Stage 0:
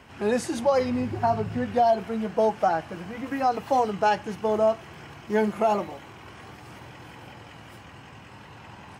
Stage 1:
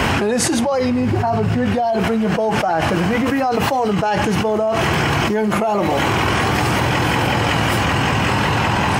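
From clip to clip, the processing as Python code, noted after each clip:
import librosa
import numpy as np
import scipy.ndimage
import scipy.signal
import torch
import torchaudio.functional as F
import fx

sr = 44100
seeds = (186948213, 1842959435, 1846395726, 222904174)

y = fx.env_flatten(x, sr, amount_pct=100)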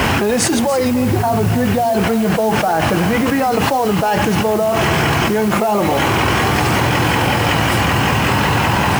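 y = fx.quant_dither(x, sr, seeds[0], bits=6, dither='triangular')
y = y + 10.0 ** (-14.0 / 20.0) * np.pad(y, (int(290 * sr / 1000.0), 0))[:len(y)]
y = y * librosa.db_to_amplitude(2.0)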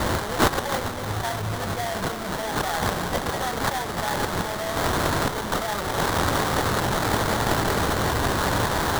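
y = fx.tone_stack(x, sr, knobs='10-0-10')
y = y + 10.0 ** (-12.5 / 20.0) * np.pad(y, (int(320 * sr / 1000.0), 0))[:len(y)]
y = fx.sample_hold(y, sr, seeds[1], rate_hz=2600.0, jitter_pct=20)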